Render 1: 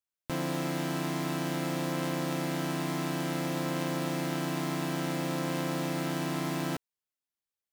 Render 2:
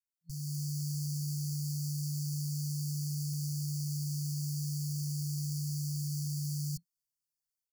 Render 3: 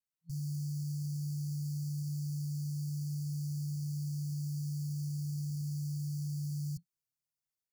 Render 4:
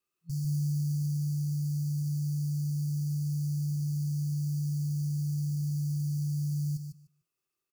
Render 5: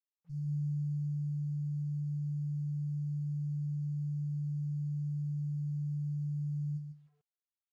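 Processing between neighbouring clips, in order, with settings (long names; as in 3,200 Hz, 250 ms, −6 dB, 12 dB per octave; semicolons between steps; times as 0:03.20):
brick-wall band-stop 170–4,300 Hz; comb filter 5.8 ms, depth 89%; automatic gain control gain up to 8 dB; level −8 dB
parametric band 130 Hz +9 dB 1.5 octaves; brickwall limiter −27.5 dBFS, peak gain reduction 7.5 dB; level −4 dB
speech leveller within 4 dB 2 s; hollow resonant body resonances 370/1,200/2,600 Hz, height 17 dB, ringing for 45 ms; on a send: repeating echo 149 ms, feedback 15%, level −7 dB; on the sum: level +2.5 dB
tuned comb filter 150 Hz, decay 0.2 s, harmonics all, mix 90%; bit-depth reduction 12 bits, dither none; head-to-tape spacing loss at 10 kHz 21 dB; level −3 dB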